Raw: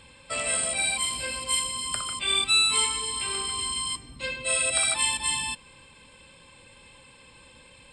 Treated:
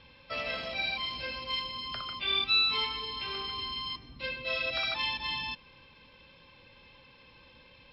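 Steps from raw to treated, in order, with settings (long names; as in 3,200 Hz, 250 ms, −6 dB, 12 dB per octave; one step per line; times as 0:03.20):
Butterworth low-pass 5,900 Hz 96 dB per octave
floating-point word with a short mantissa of 6 bits
level −4 dB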